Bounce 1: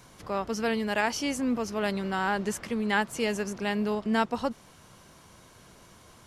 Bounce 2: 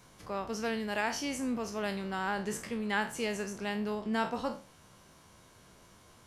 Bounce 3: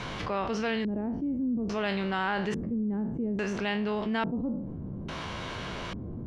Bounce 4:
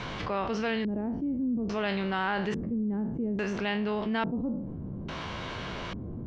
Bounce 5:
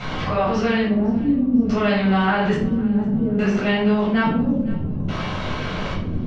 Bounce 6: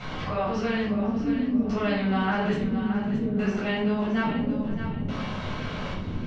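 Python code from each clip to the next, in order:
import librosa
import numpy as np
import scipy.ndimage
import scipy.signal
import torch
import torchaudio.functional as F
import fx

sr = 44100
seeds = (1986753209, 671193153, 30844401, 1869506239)

y1 = fx.spec_trails(x, sr, decay_s=0.35)
y1 = y1 * librosa.db_to_amplitude(-6.0)
y2 = fx.filter_lfo_lowpass(y1, sr, shape='square', hz=0.59, low_hz=270.0, high_hz=3200.0, q=1.4)
y2 = fx.env_flatten(y2, sr, amount_pct=70)
y3 = scipy.signal.sosfilt(scipy.signal.butter(2, 6100.0, 'lowpass', fs=sr, output='sos'), y2)
y4 = fx.echo_feedback(y3, sr, ms=508, feedback_pct=47, wet_db=-22.0)
y4 = fx.room_shoebox(y4, sr, seeds[0], volume_m3=840.0, walls='furnished', distance_m=6.9)
y5 = fx.echo_feedback(y4, sr, ms=622, feedback_pct=30, wet_db=-9.5)
y5 = y5 * librosa.db_to_amplitude(-7.0)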